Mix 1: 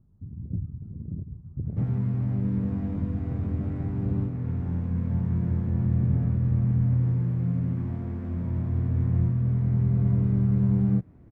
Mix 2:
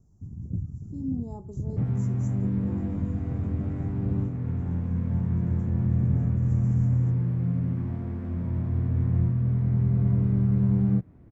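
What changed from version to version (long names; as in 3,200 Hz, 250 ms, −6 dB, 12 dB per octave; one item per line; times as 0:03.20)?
speech: unmuted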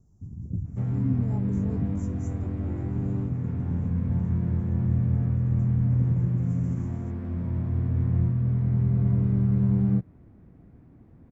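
second sound: entry −1.00 s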